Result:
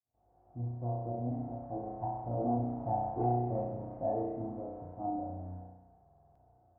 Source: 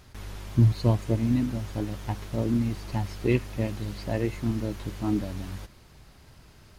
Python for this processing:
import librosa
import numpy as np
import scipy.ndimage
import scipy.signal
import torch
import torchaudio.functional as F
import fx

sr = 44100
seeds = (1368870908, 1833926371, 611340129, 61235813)

y = fx.fade_in_head(x, sr, length_s=1.29)
y = fx.doppler_pass(y, sr, speed_mps=12, closest_m=12.0, pass_at_s=3.05)
y = scipy.signal.sosfilt(scipy.signal.butter(2, 63.0, 'highpass', fs=sr, output='sos'), y)
y = fx.rev_spring(y, sr, rt60_s=1.0, pass_ms=(33,), chirp_ms=55, drr_db=-2.5)
y = 10.0 ** (-21.5 / 20.0) * np.tanh(y / 10.0 ** (-21.5 / 20.0))
y = fx.ladder_lowpass(y, sr, hz=770.0, resonance_pct=80)
y = fx.notch_comb(y, sr, f0_hz=200.0)
y = fx.buffer_glitch(y, sr, at_s=(6.03,), block=2048, repeats=6)
y = F.gain(torch.from_numpy(y), 4.5).numpy()